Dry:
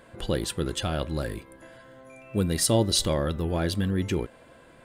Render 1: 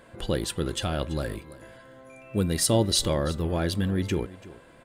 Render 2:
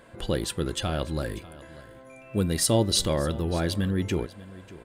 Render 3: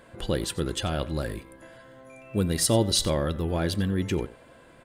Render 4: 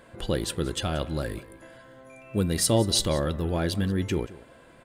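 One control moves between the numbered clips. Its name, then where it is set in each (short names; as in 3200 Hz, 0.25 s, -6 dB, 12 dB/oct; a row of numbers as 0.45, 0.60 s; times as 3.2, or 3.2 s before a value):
echo, time: 335, 592, 91, 182 ms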